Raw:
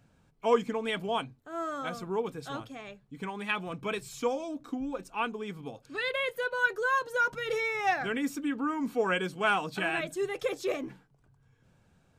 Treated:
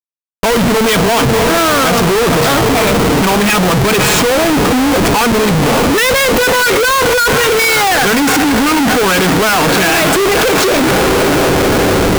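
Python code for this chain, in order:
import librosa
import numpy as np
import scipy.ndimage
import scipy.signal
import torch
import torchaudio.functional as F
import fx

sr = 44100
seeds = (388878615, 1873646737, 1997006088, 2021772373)

y = fx.echo_diffused(x, sr, ms=543, feedback_pct=70, wet_db=-15)
y = fx.leveller(y, sr, passes=5)
y = fx.schmitt(y, sr, flips_db=-37.0)
y = y * 10.0 ** (8.0 / 20.0)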